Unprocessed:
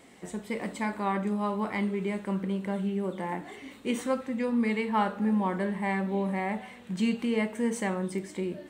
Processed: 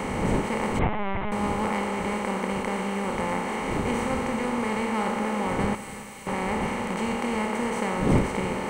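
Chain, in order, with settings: per-bin compression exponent 0.2; wind noise 300 Hz -26 dBFS; 5.75–6.27 differentiator; on a send: multi-head echo 96 ms, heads first and third, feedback 62%, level -16.5 dB; 0.79–1.32 on the sum: LPC vocoder at 8 kHz pitch kept; gain -7 dB

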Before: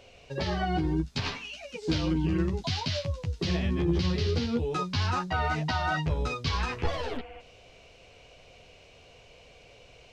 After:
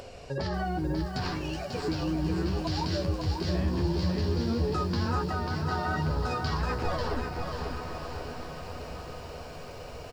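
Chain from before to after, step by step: band shelf 2800 Hz -9 dB 1.1 oct; notch 6200 Hz, Q 7.3; in parallel at -3 dB: upward compressor, threshold -32 dBFS; on the sum: limiter -21.5 dBFS, peak gain reduction 9.5 dB; 5.26–5.71 compressor, threshold -30 dBFS, peak gain reduction 5 dB; on a send: diffused feedback echo 1.138 s, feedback 53%, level -8.5 dB; on the sum: downsampling 32000 Hz; lo-fi delay 0.542 s, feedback 35%, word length 9-bit, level -5 dB; gain -1.5 dB

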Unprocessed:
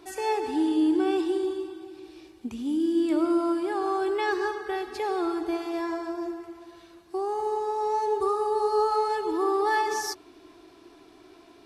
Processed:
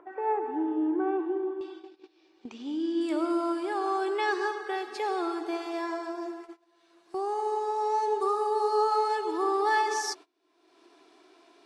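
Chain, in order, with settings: HPF 390 Hz 12 dB/oct; gate -44 dBFS, range -24 dB; LPF 1600 Hz 24 dB/oct, from 1.61 s 5800 Hz, from 3.01 s 9800 Hz; upward compressor, threshold -40 dBFS

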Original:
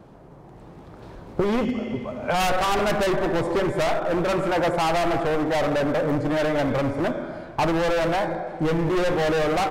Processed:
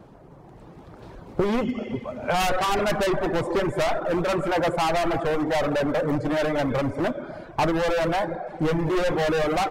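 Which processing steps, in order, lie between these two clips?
reverb removal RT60 0.55 s; on a send: reverb RT60 1.2 s, pre-delay 17 ms, DRR 23 dB

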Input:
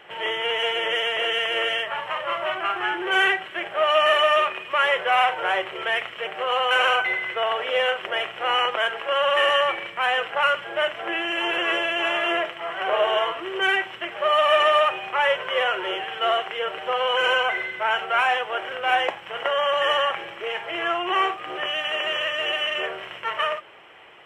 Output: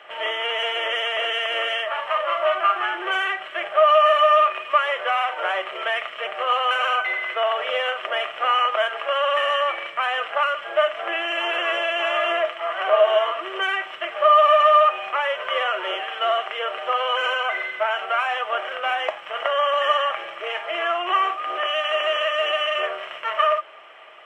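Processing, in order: weighting filter A; compressor, threshold -21 dBFS, peak gain reduction 7 dB; small resonant body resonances 630/1200 Hz, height 12 dB, ringing for 45 ms

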